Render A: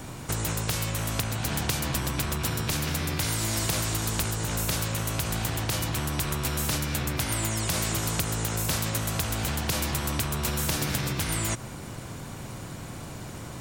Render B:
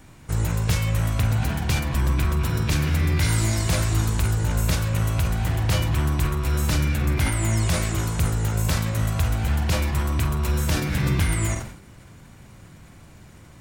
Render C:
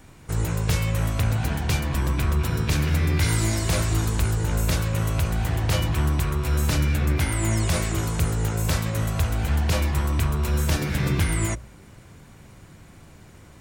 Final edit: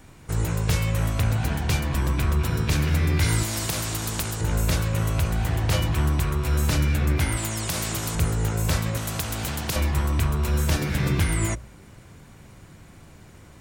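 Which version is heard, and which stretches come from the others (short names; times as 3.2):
C
3.43–4.41 from A
7.37–8.15 from A
8.97–9.76 from A
not used: B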